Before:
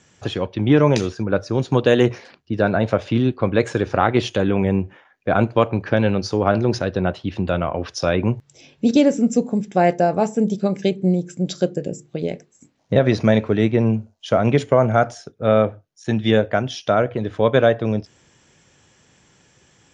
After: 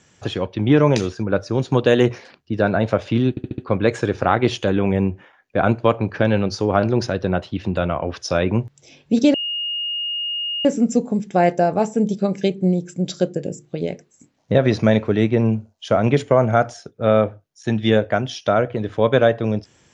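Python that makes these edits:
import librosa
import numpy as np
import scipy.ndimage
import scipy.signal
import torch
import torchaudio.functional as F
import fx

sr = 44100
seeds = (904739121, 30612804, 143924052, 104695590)

y = fx.edit(x, sr, fx.stutter(start_s=3.3, slice_s=0.07, count=5),
    fx.insert_tone(at_s=9.06, length_s=1.31, hz=2850.0, db=-22.0), tone=tone)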